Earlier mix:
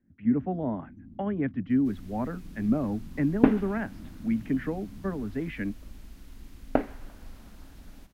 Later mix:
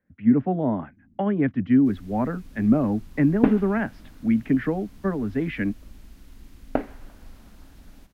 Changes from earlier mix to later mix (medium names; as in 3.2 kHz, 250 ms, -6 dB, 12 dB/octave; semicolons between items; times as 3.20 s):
speech +6.5 dB; first sound -10.0 dB